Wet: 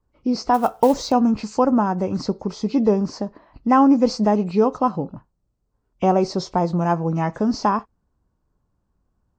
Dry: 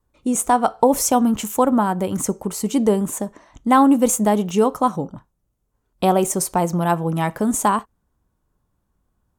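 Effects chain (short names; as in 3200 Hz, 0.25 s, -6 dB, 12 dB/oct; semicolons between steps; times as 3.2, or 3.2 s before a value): nonlinear frequency compression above 1900 Hz 1.5:1; high shelf 2300 Hz -11.5 dB; 0.54–1.12 companded quantiser 6-bit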